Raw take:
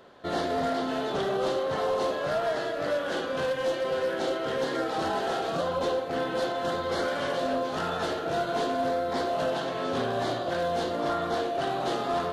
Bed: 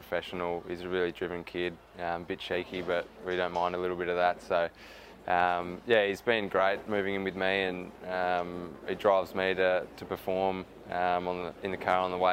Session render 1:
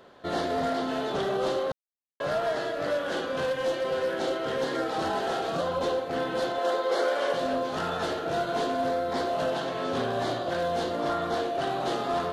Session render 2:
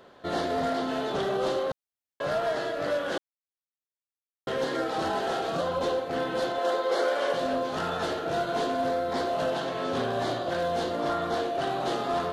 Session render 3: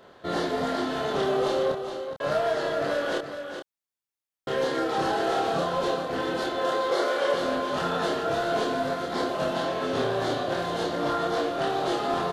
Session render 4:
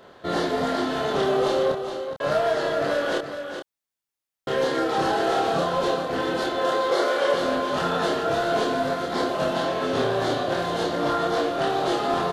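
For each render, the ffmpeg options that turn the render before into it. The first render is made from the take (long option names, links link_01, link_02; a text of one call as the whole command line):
ffmpeg -i in.wav -filter_complex "[0:a]asettb=1/sr,asplit=3[link_01][link_02][link_03];[link_01]atrim=end=6.584[link_04];[link_02]atrim=start=6.58:end=7.33,asetpts=PTS-STARTPTS,afade=type=in:duration=0.004:curve=qsin,afade=type=out:start_time=0.746:duration=0.004:curve=qsin,highpass=frequency=450:width_type=q:width=1.6[link_05];[link_03]atrim=start=7.326[link_06];[link_04][link_05]acrossfade=duration=0.004:curve1=hsin:curve2=qsin[link_07];[link_07][link_06]acrossfade=duration=0.004:curve1=qsin:curve2=hsin,asplit=3[link_08][link_09][link_10];[link_08]atrim=end=1.72,asetpts=PTS-STARTPTS,afade=type=out:start_time=1.716:duration=0.004:curve=hsin[link_11];[link_09]atrim=start=1.72:end=2.2,asetpts=PTS-STARTPTS,volume=0[link_12];[link_10]atrim=start=2.2,asetpts=PTS-STARTPTS,afade=type=in:duration=0.004:curve=hsin[link_13];[link_11][link_12][link_13]concat=n=3:v=0:a=1" out.wav
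ffmpeg -i in.wav -filter_complex "[0:a]asplit=3[link_01][link_02][link_03];[link_01]atrim=end=3.18,asetpts=PTS-STARTPTS,afade=type=out:start_time=3.176:duration=0.004:curve=hsin[link_04];[link_02]atrim=start=3.18:end=4.47,asetpts=PTS-STARTPTS,volume=0[link_05];[link_03]atrim=start=4.47,asetpts=PTS-STARTPTS,afade=type=in:duration=0.004:curve=hsin[link_06];[link_04][link_05][link_06]concat=n=3:v=0:a=1" out.wav
ffmpeg -i in.wav -filter_complex "[0:a]asplit=2[link_01][link_02];[link_02]adelay=28,volume=-2.5dB[link_03];[link_01][link_03]amix=inputs=2:normalize=0,aecho=1:1:417:0.398" out.wav
ffmpeg -i in.wav -af "volume=3dB" out.wav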